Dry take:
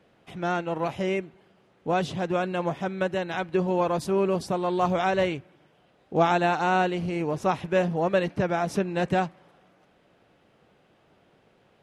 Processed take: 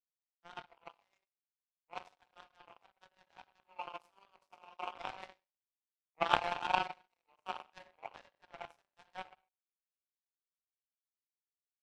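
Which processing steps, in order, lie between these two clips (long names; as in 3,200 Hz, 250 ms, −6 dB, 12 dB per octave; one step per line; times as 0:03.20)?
four-pole ladder high-pass 760 Hz, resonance 55%
rectangular room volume 460 cubic metres, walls mixed, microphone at 1.7 metres
power curve on the samples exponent 3
level +5 dB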